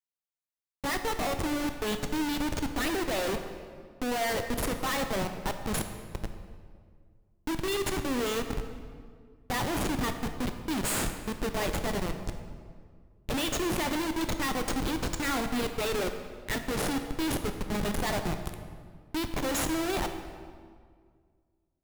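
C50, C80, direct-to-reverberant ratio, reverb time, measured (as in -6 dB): 8.0 dB, 9.0 dB, 6.5 dB, 1.9 s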